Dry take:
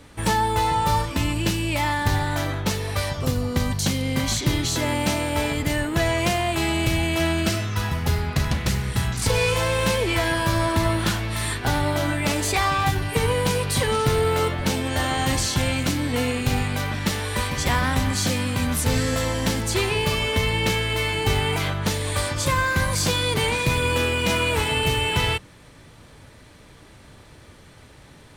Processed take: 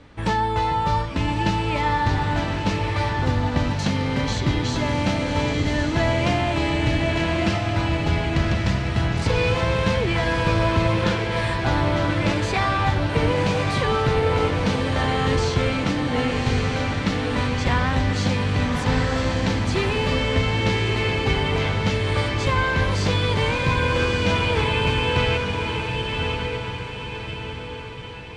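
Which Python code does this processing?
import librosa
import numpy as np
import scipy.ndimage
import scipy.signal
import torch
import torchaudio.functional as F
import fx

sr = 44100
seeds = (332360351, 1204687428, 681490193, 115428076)

p1 = fx.air_absorb(x, sr, metres=140.0)
y = p1 + fx.echo_diffused(p1, sr, ms=1150, feedback_pct=48, wet_db=-3.5, dry=0)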